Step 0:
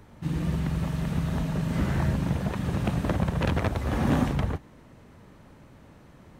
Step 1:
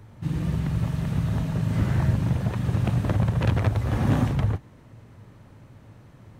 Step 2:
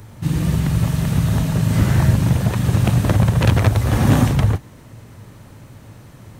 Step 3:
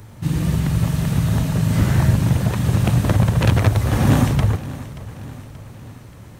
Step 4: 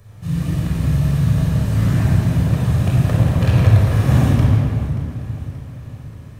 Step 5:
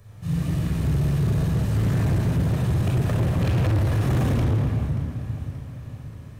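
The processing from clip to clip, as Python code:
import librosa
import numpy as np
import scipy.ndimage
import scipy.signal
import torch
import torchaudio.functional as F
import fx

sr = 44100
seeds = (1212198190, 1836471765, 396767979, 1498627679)

y1 = fx.peak_eq(x, sr, hz=110.0, db=13.0, octaves=0.43)
y1 = F.gain(torch.from_numpy(y1), -1.0).numpy()
y2 = fx.high_shelf(y1, sr, hz=4900.0, db=12.0)
y2 = F.gain(torch.from_numpy(y2), 7.5).numpy()
y3 = fx.echo_feedback(y2, sr, ms=580, feedback_pct=53, wet_db=-16.5)
y3 = F.gain(torch.from_numpy(y3), -1.0).numpy()
y4 = fx.room_shoebox(y3, sr, seeds[0], volume_m3=3800.0, walls='mixed', distance_m=5.9)
y4 = F.gain(torch.from_numpy(y4), -10.0).numpy()
y5 = np.clip(y4, -10.0 ** (-14.5 / 20.0), 10.0 ** (-14.5 / 20.0))
y5 = F.gain(torch.from_numpy(y5), -3.5).numpy()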